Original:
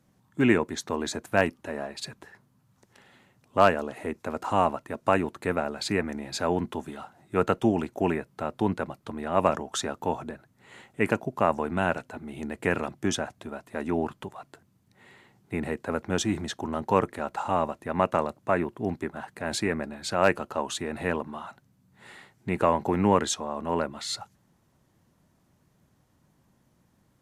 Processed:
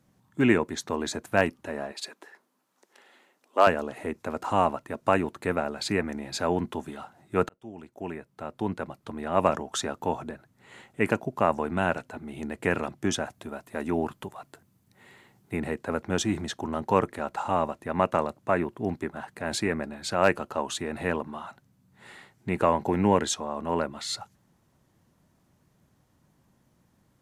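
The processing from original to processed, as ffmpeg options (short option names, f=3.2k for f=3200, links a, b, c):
-filter_complex "[0:a]asettb=1/sr,asplit=3[a][b][c];[a]atrim=end=1.924[d];[b]atrim=start=1.92:end=3.67,asetpts=PTS-STARTPTS,afade=t=in:d=0.004:c=qsin,afade=t=out:st=1.746:d=0.004:c=qsin,highpass=f=300:w=0.5412,highpass=f=300:w=1.3066[e];[c]atrim=start=3.666[f];[d][e]acrossfade=d=0.004:c1=hsin:c2=qsin[g];[g][f]acrossfade=d=0.004:c1=qsin:c2=hsin,asettb=1/sr,asplit=3[h][i][j];[h]atrim=end=13.204[k];[i]atrim=start=13.2:end=15.57,asetpts=PTS-STARTPTS,afade=t=in:d=0.004:c=qsin,afade=t=out:st=2.366:d=0.004:c=qsin,highshelf=f=11k:g=10[l];[j]atrim=start=15.566[m];[k][l]acrossfade=d=0.004:c1=hsin:c2=qsin[n];[n][m]acrossfade=d=0.004:c1=qsin:c2=hsin,asettb=1/sr,asplit=3[o][p][q];[o]atrim=end=22.854[r];[p]atrim=start=22.85:end=23.26,asetpts=PTS-STARTPTS,afade=t=in:d=0.004:c=qsin,afade=t=out:st=0.406:d=0.004:c=qsin,bandreject=f=1.2k:w=5.4[s];[q]atrim=start=23.256[t];[r][s]acrossfade=d=0.004:c1=hsin:c2=qsin[u];[u][t]acrossfade=d=0.004:c1=qsin:c2=hsin,asplit=2[v][w];[v]atrim=end=7.49,asetpts=PTS-STARTPTS,afade=t=out:st=7.486:d=0.004:c=hsin[x];[w]atrim=start=7.49,asetpts=PTS-STARTPTS,afade=t=in:d=1.84[y];[x][y]concat=n=2:v=0:a=1"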